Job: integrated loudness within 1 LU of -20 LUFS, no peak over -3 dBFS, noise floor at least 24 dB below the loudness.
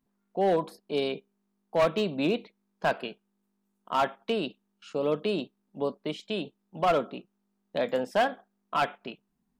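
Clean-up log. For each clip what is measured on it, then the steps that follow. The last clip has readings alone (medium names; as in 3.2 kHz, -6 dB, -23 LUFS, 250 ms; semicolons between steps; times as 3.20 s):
clipped samples 0.8%; clipping level -18.0 dBFS; loudness -30.0 LUFS; peak level -18.0 dBFS; loudness target -20.0 LUFS
-> clip repair -18 dBFS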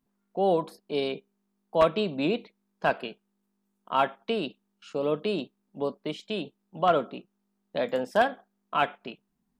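clipped samples 0.0%; loudness -29.0 LUFS; peak level -9.0 dBFS; loudness target -20.0 LUFS
-> trim +9 dB; peak limiter -3 dBFS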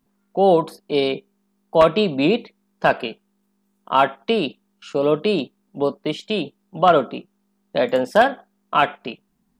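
loudness -20.5 LUFS; peak level -3.0 dBFS; noise floor -68 dBFS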